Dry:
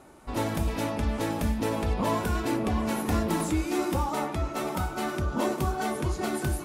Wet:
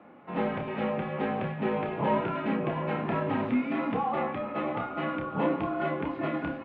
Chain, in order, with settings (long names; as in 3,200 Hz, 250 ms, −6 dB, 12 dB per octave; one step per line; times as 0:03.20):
double-tracking delay 29 ms −6 dB
single-sideband voice off tune −63 Hz 220–2,900 Hz